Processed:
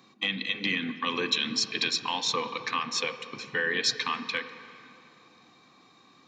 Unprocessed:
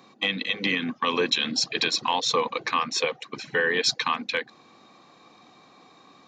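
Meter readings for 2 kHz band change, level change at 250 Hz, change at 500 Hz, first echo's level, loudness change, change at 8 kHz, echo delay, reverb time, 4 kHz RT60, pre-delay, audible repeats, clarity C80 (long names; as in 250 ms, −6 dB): −3.0 dB, −3.5 dB, −7.5 dB, no echo audible, −3.5 dB, −2.5 dB, no echo audible, 2.8 s, 2.1 s, 3 ms, no echo audible, 11.5 dB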